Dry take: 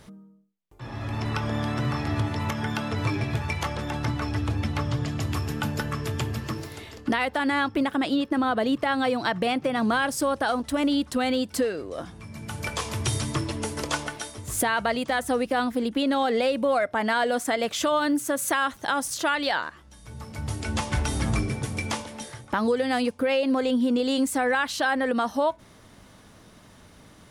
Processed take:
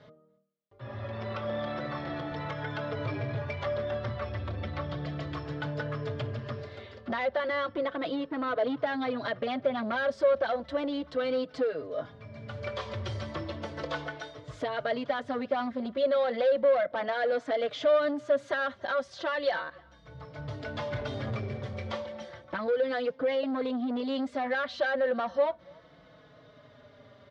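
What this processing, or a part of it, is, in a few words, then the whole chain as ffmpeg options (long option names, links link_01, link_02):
barber-pole flanger into a guitar amplifier: -filter_complex "[0:a]asplit=2[link_01][link_02];[link_02]adelay=4.3,afreqshift=-0.34[link_03];[link_01][link_03]amix=inputs=2:normalize=1,asoftclip=type=tanh:threshold=-25dB,highpass=100,equalizer=frequency=210:width_type=q:width=4:gain=-6,equalizer=frequency=320:width_type=q:width=4:gain=-5,equalizer=frequency=580:width_type=q:width=4:gain=10,equalizer=frequency=850:width_type=q:width=4:gain=-5,equalizer=frequency=2600:width_type=q:width=4:gain=-7,lowpass=frequency=3900:width=0.5412,lowpass=frequency=3900:width=1.3066,asettb=1/sr,asplit=3[link_04][link_05][link_06];[link_04]atrim=end=1.054[link_07];[link_05]atrim=start=1.05:end=2.32,asetpts=PTS-STARTPTS,afade=type=in:duration=0.004:curve=qsin,afade=type=out:start_time=1.266:duration=0.004:curve=qsin,highpass=120[link_08];[link_06]atrim=start=2.316[link_09];[link_07][link_08]acrossfade=duration=0.004:curve1=hsin:curve2=qsin[link_10];[link_10][link_09]acrossfade=duration=0.004:curve1=qsin:curve2=hsin,asplit=2[link_11][link_12];[link_12]adelay=285.7,volume=-27dB,highshelf=frequency=4000:gain=-6.43[link_13];[link_11][link_13]amix=inputs=2:normalize=0"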